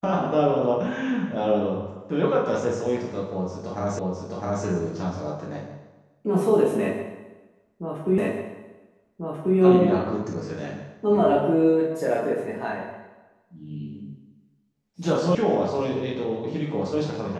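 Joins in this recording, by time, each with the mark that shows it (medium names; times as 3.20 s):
3.99 s: repeat of the last 0.66 s
8.18 s: repeat of the last 1.39 s
15.35 s: sound stops dead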